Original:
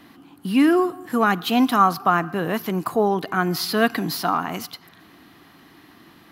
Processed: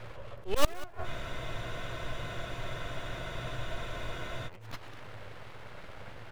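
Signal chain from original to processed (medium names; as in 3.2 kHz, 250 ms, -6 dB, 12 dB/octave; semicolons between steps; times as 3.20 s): median filter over 9 samples; full-wave rectifier; treble shelf 6.5 kHz -12 dB; in parallel at -10 dB: integer overflow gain 12 dB; on the sum: peaking EQ 110 Hz +15 dB 0.22 oct; slow attack 167 ms; inverted gate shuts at -14 dBFS, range -27 dB; on a send: delay 191 ms -18.5 dB; on the sum: spectral freeze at 1.07 s, 3.41 s; trim +3.5 dB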